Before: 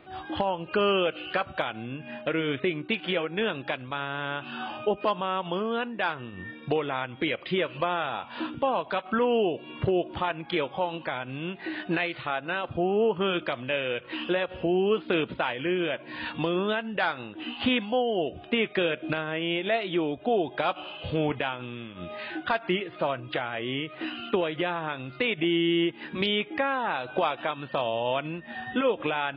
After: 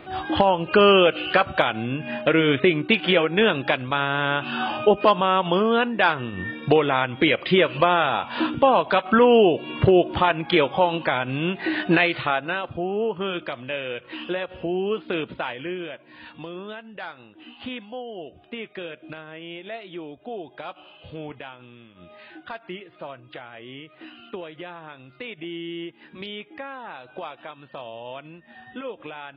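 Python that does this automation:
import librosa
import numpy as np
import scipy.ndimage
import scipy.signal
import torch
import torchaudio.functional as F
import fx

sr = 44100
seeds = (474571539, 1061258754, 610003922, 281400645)

y = fx.gain(x, sr, db=fx.line((12.2, 9.0), (12.8, -1.0), (15.54, -1.0), (16.09, -9.0)))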